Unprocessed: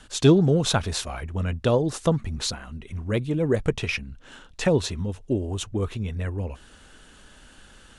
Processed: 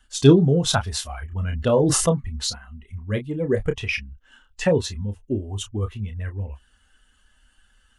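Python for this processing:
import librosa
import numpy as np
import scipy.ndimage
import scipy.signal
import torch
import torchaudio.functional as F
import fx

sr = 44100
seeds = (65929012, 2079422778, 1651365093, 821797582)

y = fx.bin_expand(x, sr, power=1.5)
y = fx.doubler(y, sr, ms=29.0, db=-9.0)
y = fx.sustainer(y, sr, db_per_s=24.0, at=(1.31, 2.09), fade=0.02)
y = y * 10.0 ** (3.5 / 20.0)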